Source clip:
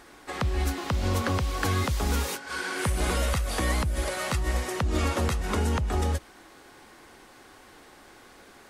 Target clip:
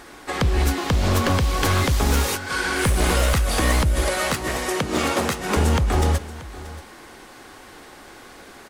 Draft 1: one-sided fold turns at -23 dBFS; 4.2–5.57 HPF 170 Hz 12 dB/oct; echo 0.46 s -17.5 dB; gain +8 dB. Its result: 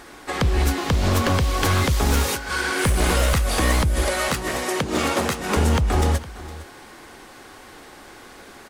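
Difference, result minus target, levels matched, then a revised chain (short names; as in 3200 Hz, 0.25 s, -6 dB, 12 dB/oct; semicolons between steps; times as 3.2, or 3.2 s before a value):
echo 0.171 s early
one-sided fold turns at -23 dBFS; 4.2–5.57 HPF 170 Hz 12 dB/oct; echo 0.631 s -17.5 dB; gain +8 dB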